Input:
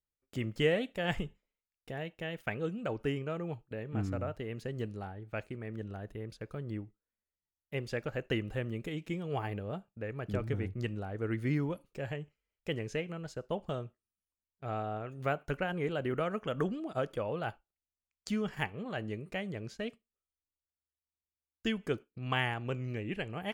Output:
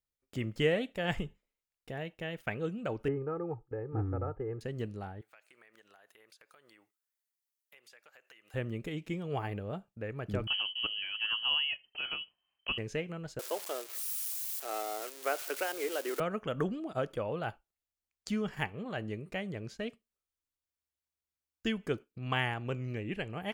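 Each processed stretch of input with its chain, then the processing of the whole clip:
3.08–4.61 LPF 1400 Hz 24 dB/oct + comb 2.4 ms, depth 74%
5.21–8.54 HPF 1000 Hz + high shelf 6900 Hz +9 dB + compressor, threshold -56 dBFS
10.47–12.78 inverted band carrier 3100 Hz + mismatched tape noise reduction encoder only
13.39–16.2 switching spikes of -28.5 dBFS + steep high-pass 320 Hz
whole clip: dry

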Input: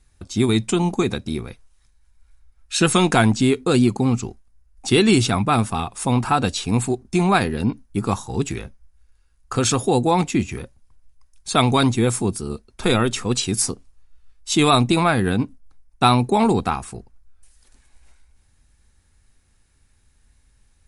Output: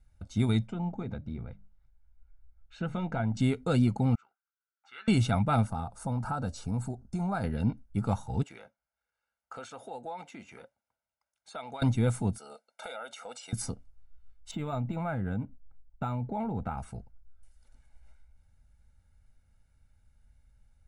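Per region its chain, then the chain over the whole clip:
0.67–3.37 notches 50/100/150/200/250/300 Hz + compressor 1.5:1, threshold -29 dBFS + tape spacing loss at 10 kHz 27 dB
4.15–5.08 ladder band-pass 1500 Hz, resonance 70% + doubler 15 ms -8.5 dB
5.67–7.44 band shelf 2600 Hz -9.5 dB 1.2 oct + compressor 2:1, threshold -24 dBFS
8.43–11.82 HPF 480 Hz + compressor 3:1, threshold -30 dBFS + high shelf 5500 Hz -7.5 dB
12.38–13.53 HPF 390 Hz 24 dB/oct + comb 1.4 ms, depth 67% + compressor 5:1, threshold -29 dBFS
14.51–16.78 air absorption 300 m + compressor 5:1, threshold -21 dBFS + decimation joined by straight lines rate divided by 4×
whole clip: high shelf 2100 Hz -12 dB; notch 740 Hz, Q 12; comb 1.4 ms, depth 67%; gain -7.5 dB

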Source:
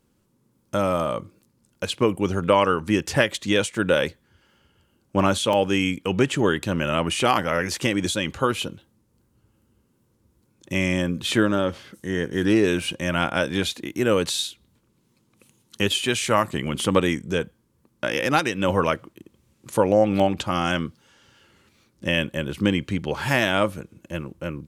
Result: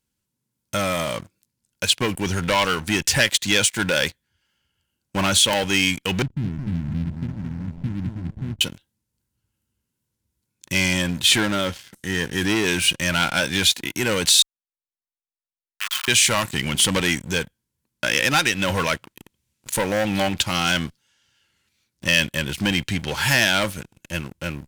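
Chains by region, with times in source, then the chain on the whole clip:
6.22–8.61 level-crossing sampler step -31 dBFS + inverse Chebyshev low-pass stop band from 790 Hz, stop band 60 dB + feedback echo 0.219 s, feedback 29%, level -6 dB
14.42–16.08 level-crossing sampler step -18.5 dBFS + ladder high-pass 1100 Hz, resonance 75%
whole clip: sample leveller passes 3; passive tone stack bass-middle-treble 5-5-5; notch 1200 Hz, Q 7.2; gain +7 dB

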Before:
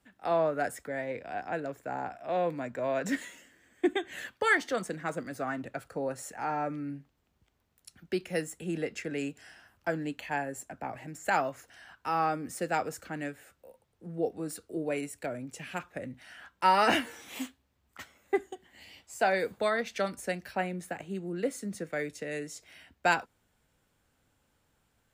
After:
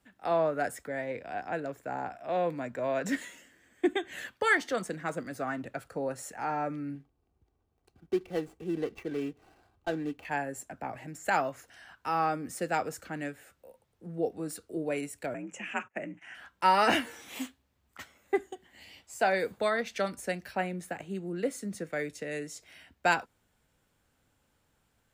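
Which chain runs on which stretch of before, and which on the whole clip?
6.95–10.25 median filter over 25 samples + high shelf 9900 Hz -3 dB + comb 2.6 ms, depth 42%
15.34–16.35 gate -55 dBFS, range -24 dB + EQ curve 420 Hz 0 dB, 2700 Hz +6 dB, 4200 Hz -22 dB, 6700 Hz +3 dB, 12000 Hz -19 dB + frequency shift +50 Hz
whole clip: dry

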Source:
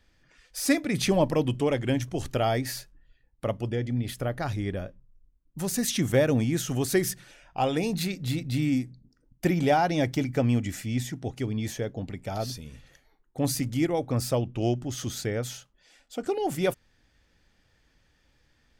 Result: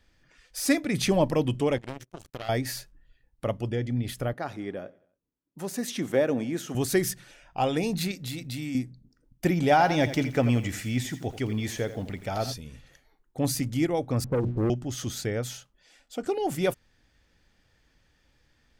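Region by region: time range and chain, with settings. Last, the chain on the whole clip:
1.78–2.49 compressor 3:1, threshold -27 dBFS + power-law curve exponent 3
4.33–6.75 HPF 250 Hz + high shelf 2400 Hz -8.5 dB + feedback echo 91 ms, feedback 51%, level -23 dB
8.11–8.75 tilt +1.5 dB/oct + compressor 3:1, threshold -31 dBFS
9.71–12.54 bell 1700 Hz +4.5 dB 2.7 oct + lo-fi delay 85 ms, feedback 35%, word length 8-bit, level -12 dB
14.24–14.7 steep low-pass 530 Hz 96 dB/oct + notches 60/120/180/240/300/360 Hz + sample leveller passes 2
whole clip: dry

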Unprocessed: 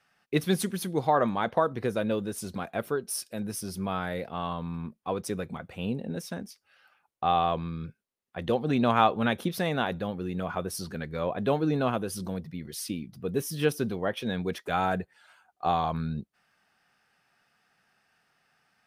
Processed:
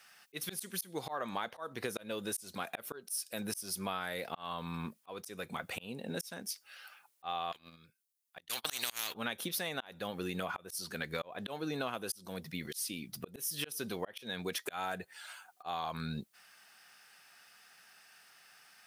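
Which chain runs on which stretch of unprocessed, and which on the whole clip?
7.52–9.15 gate -30 dBFS, range -42 dB + high shelf 2800 Hz +10 dB + spectral compressor 4:1
whole clip: tilt +3.5 dB/oct; auto swell 0.488 s; compressor 10:1, threshold -39 dBFS; gain +5.5 dB

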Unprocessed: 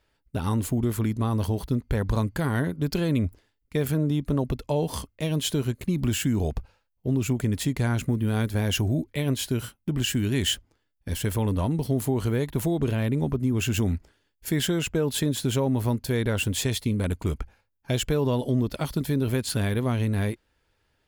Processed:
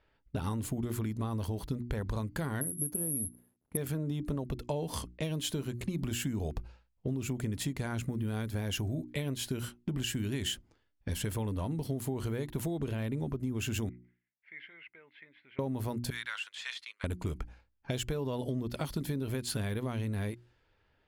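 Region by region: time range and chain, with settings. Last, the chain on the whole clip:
2.61–3.77 CVSD 64 kbps + band-pass 250 Hz, Q 0.54 + careless resampling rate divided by 4×, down none, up zero stuff
13.89–15.59 band-pass 2100 Hz, Q 11 + air absorption 300 m
16.1–17.04 HPF 1300 Hz 24 dB/oct + de-esser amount 85% + gate -48 dBFS, range -12 dB
whole clip: notches 60/120/180/240/300/360 Hz; low-pass opened by the level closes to 3000 Hz, open at -25.5 dBFS; compressor 6:1, threshold -31 dBFS

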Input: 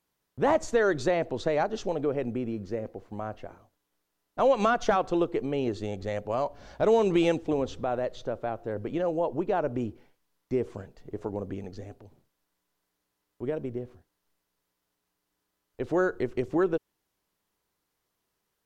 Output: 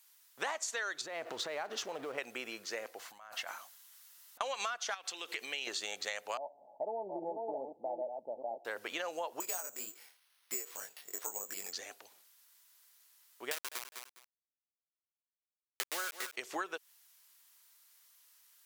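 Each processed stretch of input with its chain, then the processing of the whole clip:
1.01–2.18 G.711 law mismatch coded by mu + compressor 5:1, threshold -33 dBFS + tilt -4 dB/oct
2.99–4.41 bell 410 Hz -11 dB 0.75 oct + notch 2400 Hz, Q 21 + negative-ratio compressor -44 dBFS, ratio -0.5
4.94–5.67 compressor 10:1, threshold -33 dBFS + resonant high shelf 1600 Hz +6 dB, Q 1.5
6.37–8.65 reverse delay 0.411 s, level -6.5 dB + rippled Chebyshev low-pass 890 Hz, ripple 6 dB
9.4–11.73 chorus 1.9 Hz, delay 19 ms, depth 4.1 ms + careless resampling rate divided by 6×, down none, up hold
13.51–16.36 sample gate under -30 dBFS + feedback echo 0.204 s, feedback 18%, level -13.5 dB
whole clip: HPF 1400 Hz 12 dB/oct; high shelf 4800 Hz +10.5 dB; compressor 12:1, threshold -44 dBFS; gain +10 dB

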